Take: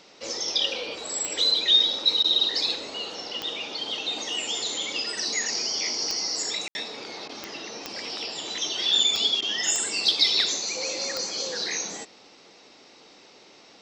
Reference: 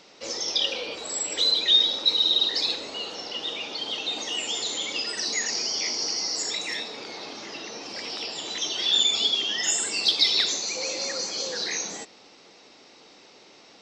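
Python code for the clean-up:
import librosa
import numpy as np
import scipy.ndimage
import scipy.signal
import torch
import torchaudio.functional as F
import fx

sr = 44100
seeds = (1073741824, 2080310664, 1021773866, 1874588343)

y = fx.fix_declick_ar(x, sr, threshold=10.0)
y = fx.fix_ambience(y, sr, seeds[0], print_start_s=12.35, print_end_s=12.85, start_s=6.68, end_s=6.75)
y = fx.fix_interpolate(y, sr, at_s=(2.23, 7.28, 9.41), length_ms=11.0)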